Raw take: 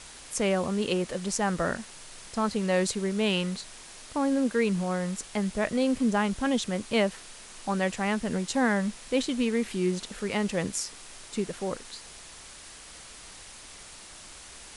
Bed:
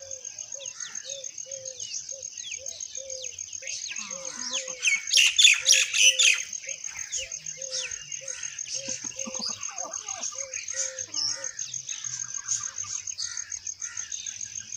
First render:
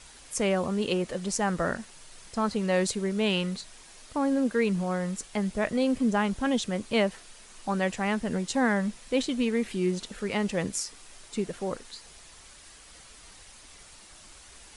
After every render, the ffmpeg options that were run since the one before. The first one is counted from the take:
ffmpeg -i in.wav -af "afftdn=noise_reduction=6:noise_floor=-47" out.wav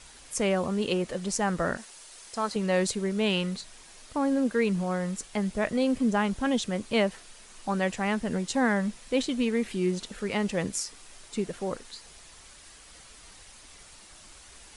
ffmpeg -i in.wav -filter_complex "[0:a]asettb=1/sr,asplit=3[link_01][link_02][link_03];[link_01]atrim=end=1.774[link_04];[link_02]atrim=start=1.77:end=2.56,asetpts=PTS-STARTPTS,afade=type=in:duration=0.004:curve=qsin,afade=type=out:start_time=0.786:duration=0.004:curve=qsin,bass=frequency=250:gain=-13,treble=frequency=4000:gain=4[link_05];[link_03]atrim=start=2.556[link_06];[link_04][link_05]acrossfade=duration=0.004:curve1=hsin:curve2=qsin[link_07];[link_07][link_06]acrossfade=duration=0.004:curve1=qsin:curve2=hsin" out.wav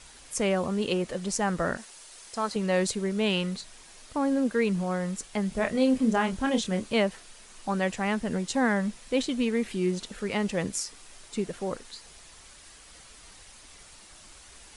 ffmpeg -i in.wav -filter_complex "[0:a]asettb=1/sr,asplit=3[link_01][link_02][link_03];[link_01]atrim=end=5.494[link_04];[link_02]atrim=start=5.49:end=6.94,asetpts=PTS-STARTPTS,afade=type=in:duration=0.004:curve=qsin,afade=type=out:start_time=1.446:duration=0.004:curve=qsin,asplit=2[link_05][link_06];[link_06]adelay=27,volume=-6dB[link_07];[link_05][link_07]amix=inputs=2:normalize=0,atrim=end_sample=63945[link_08];[link_03]atrim=start=6.936[link_09];[link_04][link_08]acrossfade=duration=0.004:curve1=hsin:curve2=qsin[link_10];[link_10][link_09]acrossfade=duration=0.004:curve1=qsin:curve2=hsin" out.wav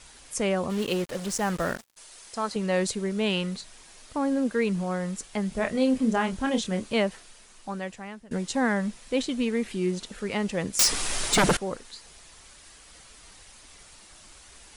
ffmpeg -i in.wav -filter_complex "[0:a]asplit=3[link_01][link_02][link_03];[link_01]afade=type=out:start_time=0.69:duration=0.02[link_04];[link_02]acrusher=bits=5:mix=0:aa=0.5,afade=type=in:start_time=0.69:duration=0.02,afade=type=out:start_time=1.96:duration=0.02[link_05];[link_03]afade=type=in:start_time=1.96:duration=0.02[link_06];[link_04][link_05][link_06]amix=inputs=3:normalize=0,asettb=1/sr,asplit=3[link_07][link_08][link_09];[link_07]atrim=end=10.794[link_10];[link_08]atrim=start=10.79:end=11.57,asetpts=PTS-STARTPTS,afade=type=in:duration=0.004:curve=qsin,afade=type=out:start_time=0.776:duration=0.004:curve=qsin,aeval=exprs='0.168*sin(PI/2*7.08*val(0)/0.168)':channel_layout=same[link_11];[link_09]atrim=start=11.566[link_12];[link_10][link_11]acrossfade=duration=0.004:curve1=hsin:curve2=qsin[link_13];[link_13][link_12]acrossfade=duration=0.004:curve1=qsin:curve2=hsin,asplit=2[link_14][link_15];[link_14]atrim=end=8.31,asetpts=PTS-STARTPTS,afade=type=out:start_time=7.14:duration=1.17:silence=0.0749894[link_16];[link_15]atrim=start=8.31,asetpts=PTS-STARTPTS,afade=type=in:duration=0.004:curve=hsin:silence=0.0749894[link_17];[link_16][link_17]concat=n=2:v=0:a=1" out.wav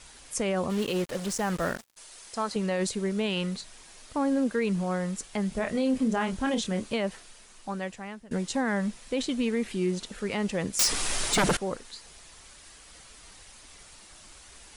ffmpeg -i in.wav -af "alimiter=limit=-18.5dB:level=0:latency=1:release=44" out.wav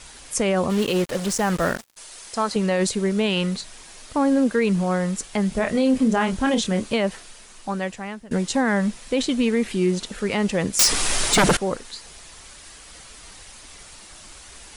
ffmpeg -i in.wav -af "volume=7dB" out.wav

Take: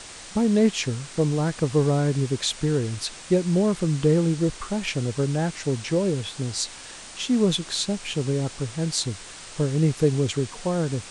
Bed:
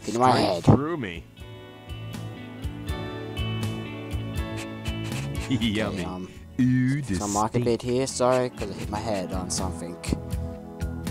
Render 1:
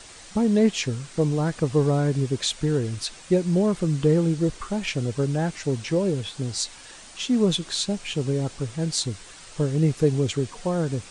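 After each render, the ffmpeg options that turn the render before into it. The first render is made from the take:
ffmpeg -i in.wav -af "afftdn=noise_reduction=6:noise_floor=-42" out.wav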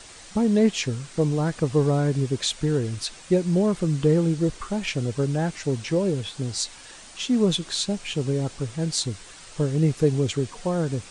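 ffmpeg -i in.wav -af anull out.wav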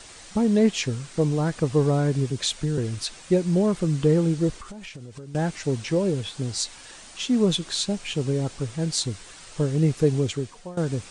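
ffmpeg -i in.wav -filter_complex "[0:a]asettb=1/sr,asplit=3[link_01][link_02][link_03];[link_01]atrim=end=2.304[link_04];[link_02]atrim=start=2.3:end=2.78,asetpts=PTS-STARTPTS,afade=type=in:duration=0.004:curve=qsin,afade=type=out:start_time=0.476:duration=0.004:curve=qsin,acrossover=split=220|3000[link_05][link_06][link_07];[link_06]acompressor=threshold=-31dB:ratio=3:attack=3.2:release=140:knee=2.83:detection=peak[link_08];[link_05][link_08][link_07]amix=inputs=3:normalize=0[link_09];[link_03]atrim=start=2.776[link_10];[link_04][link_09]acrossfade=duration=0.004:curve1=hsin:curve2=qsin[link_11];[link_11][link_10]acrossfade=duration=0.004:curve1=qsin:curve2=hsin,asettb=1/sr,asplit=3[link_12][link_13][link_14];[link_12]atrim=end=4.574[link_15];[link_13]atrim=start=4.57:end=5.35,asetpts=PTS-STARTPTS,afade=type=in:duration=0.004:curve=qsin,afade=type=out:start_time=0.776:duration=0.004:curve=qsin,acompressor=threshold=-35dB:ratio=20:attack=3.2:release=140:knee=1:detection=peak[link_16];[link_14]atrim=start=5.346[link_17];[link_15][link_16]acrossfade=duration=0.004:curve1=hsin:curve2=qsin[link_18];[link_18][link_17]acrossfade=duration=0.004:curve1=qsin:curve2=hsin,asplit=2[link_19][link_20];[link_19]atrim=end=10.77,asetpts=PTS-STARTPTS,afade=type=out:start_time=10.18:duration=0.59:silence=0.141254[link_21];[link_20]atrim=start=10.77,asetpts=PTS-STARTPTS,afade=type=in:duration=0.004:curve=hsin:silence=0.141254[link_22];[link_21][link_22]concat=n=2:v=0:a=1" out.wav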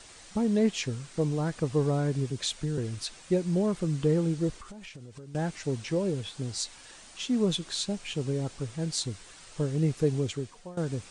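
ffmpeg -i in.wav -af "volume=-5.5dB" out.wav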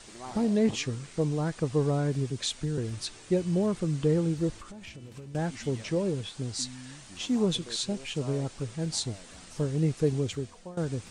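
ffmpeg -i in.wav -i bed.wav -filter_complex "[1:a]volume=-23dB[link_01];[0:a][link_01]amix=inputs=2:normalize=0" out.wav

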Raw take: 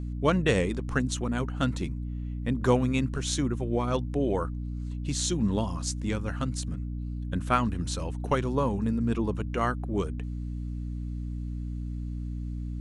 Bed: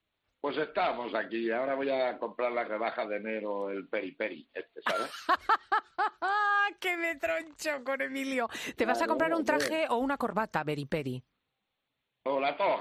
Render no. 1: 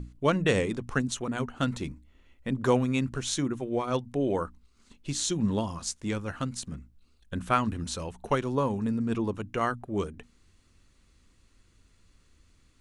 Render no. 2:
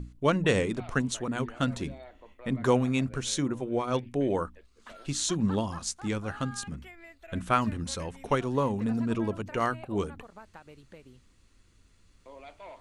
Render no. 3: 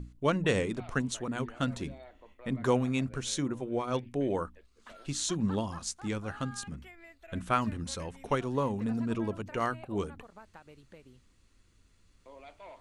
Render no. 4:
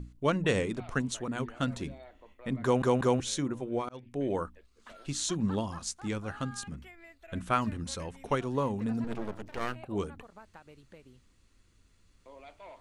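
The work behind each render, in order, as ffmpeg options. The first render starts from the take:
ffmpeg -i in.wav -af "bandreject=frequency=60:width_type=h:width=6,bandreject=frequency=120:width_type=h:width=6,bandreject=frequency=180:width_type=h:width=6,bandreject=frequency=240:width_type=h:width=6,bandreject=frequency=300:width_type=h:width=6" out.wav
ffmpeg -i in.wav -i bed.wav -filter_complex "[1:a]volume=-18.5dB[link_01];[0:a][link_01]amix=inputs=2:normalize=0" out.wav
ffmpeg -i in.wav -af "volume=-3dB" out.wav
ffmpeg -i in.wav -filter_complex "[0:a]asettb=1/sr,asplit=3[link_01][link_02][link_03];[link_01]atrim=end=9.044[link_04];[link_02]atrim=start=9.04:end=9.76,asetpts=PTS-STARTPTS,afade=type=in:duration=0.004:curve=qsin,afade=type=out:start_time=0.716:duration=0.004:curve=qsin,aeval=exprs='max(val(0),0)':channel_layout=same[link_05];[link_03]atrim=start=9.756[link_06];[link_04][link_05]acrossfade=duration=0.004:curve1=hsin:curve2=qsin[link_07];[link_07][link_06]acrossfade=duration=0.004:curve1=qsin:curve2=hsin,asplit=5[link_08][link_09][link_10][link_11][link_12];[link_08]atrim=end=2.822[link_13];[link_09]atrim=start=2.628:end=2.822[link_14];[link_10]atrim=start=2.628:end=2.822[link_15];[link_11]atrim=start=3.198:end=3.89,asetpts=PTS-STARTPTS,afade=type=out:start_time=0.688:duration=0.004:curve=hsin[link_16];[link_12]atrim=start=3.89,asetpts=PTS-STARTPTS,afade=type=in:duration=0.52:curve=qsin[link_17];[link_13][link_14]acrossfade=duration=0.004:curve1=hsin:curve2=hsin[link_18];[link_18][link_15]acrossfade=duration=0.004:curve1=hsin:curve2=hsin[link_19];[link_16][link_17]concat=n=2:v=0:a=1[link_20];[link_19][link_20]acrossfade=duration=0.004:curve1=hsin:curve2=hsin" out.wav

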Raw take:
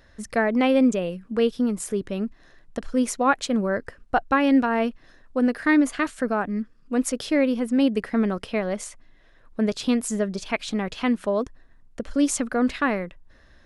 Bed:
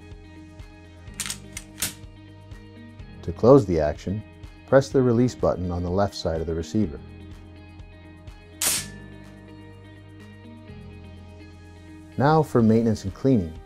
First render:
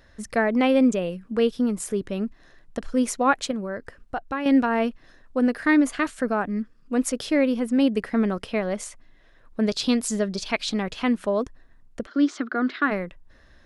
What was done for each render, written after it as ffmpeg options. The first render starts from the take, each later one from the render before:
ffmpeg -i in.wav -filter_complex "[0:a]asettb=1/sr,asplit=3[link_01][link_02][link_03];[link_01]atrim=end=3.514[link_04];[link_02]atrim=start=3.51:end=4.46,asetpts=PTS-STARTPTS,afade=type=in:duration=0.004:curve=qsin,afade=type=out:start_time=0.946:duration=0.004:curve=qsin,acompressor=threshold=-38dB:ratio=1.5:attack=3.2:release=140:knee=1:detection=peak[link_05];[link_03]atrim=start=4.456[link_06];[link_04][link_05]acrossfade=duration=0.004:curve1=hsin:curve2=qsin[link_07];[link_07][link_06]acrossfade=duration=0.004:curve1=qsin:curve2=hsin,asettb=1/sr,asplit=3[link_08][link_09][link_10];[link_08]atrim=end=9.634[link_11];[link_09]atrim=start=9.63:end=10.83,asetpts=PTS-STARTPTS,afade=type=in:duration=0.004:curve=qsin,afade=type=out:start_time=1.196:duration=0.004:curve=qsin,equalizer=frequency=4500:width=1.5:gain=7.5[link_12];[link_10]atrim=start=10.826[link_13];[link_11][link_12]acrossfade=duration=0.004:curve1=hsin:curve2=qsin[link_14];[link_14][link_13]acrossfade=duration=0.004:curve1=qsin:curve2=hsin,asplit=3[link_15][link_16][link_17];[link_15]afade=type=out:start_time=12.05:duration=0.02[link_18];[link_16]highpass=frequency=250:width=0.5412,highpass=frequency=250:width=1.3066,equalizer=frequency=350:width_type=q:width=4:gain=8,equalizer=frequency=520:width_type=q:width=4:gain=-10,equalizer=frequency=880:width_type=q:width=4:gain=-7,equalizer=frequency=1400:width_type=q:width=4:gain=6,equalizer=frequency=2600:width_type=q:width=4:gain=-8,lowpass=frequency=4400:width=0.5412,lowpass=frequency=4400:width=1.3066,afade=type=in:start_time=12.05:duration=0.02,afade=type=out:start_time=12.9:duration=0.02[link_19];[link_17]afade=type=in:start_time=12.9:duration=0.02[link_20];[link_18][link_19][link_20]amix=inputs=3:normalize=0" out.wav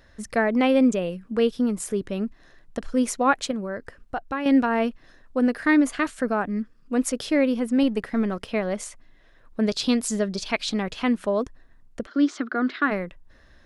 ffmpeg -i in.wav -filter_complex "[0:a]asettb=1/sr,asplit=3[link_01][link_02][link_03];[link_01]atrim=end=7.834[link_04];[link_02]atrim=start=7.83:end=8.5,asetpts=PTS-STARTPTS,afade=type=in:duration=0.004:curve=qsin,afade=type=out:start_time=0.666:duration=0.004:curve=qsin,aeval=exprs='if(lt(val(0),0),0.708*val(0),val(0))':channel_layout=same[link_05];[link_03]atrim=start=8.496[link_06];[link_04][link_05]acrossfade=duration=0.004:curve1=hsin:curve2=qsin[link_07];[link_07][link_06]acrossfade=duration=0.004:curve1=qsin:curve2=hsin" out.wav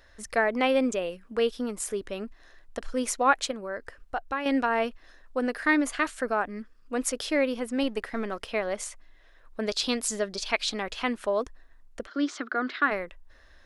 ffmpeg -i in.wav -af "equalizer=frequency=160:width_type=o:width=1.7:gain=-14.5" out.wav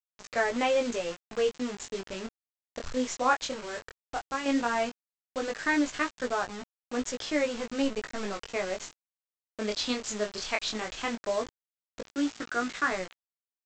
ffmpeg -i in.wav -af "aresample=16000,acrusher=bits=5:mix=0:aa=0.000001,aresample=44100,flanger=delay=16:depth=7.9:speed=0.15" out.wav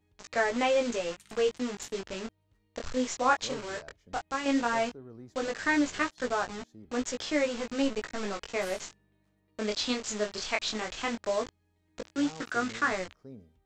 ffmpeg -i in.wav -i bed.wav -filter_complex "[1:a]volume=-28dB[link_01];[0:a][link_01]amix=inputs=2:normalize=0" out.wav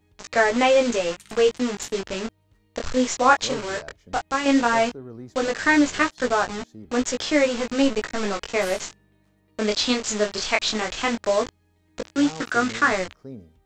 ffmpeg -i in.wav -af "volume=8.5dB" out.wav

